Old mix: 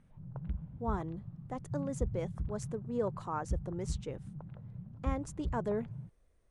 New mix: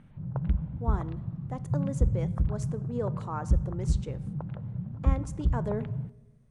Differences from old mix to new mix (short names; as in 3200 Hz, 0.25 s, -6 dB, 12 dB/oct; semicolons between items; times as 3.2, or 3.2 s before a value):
background +10.5 dB; reverb: on, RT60 1.1 s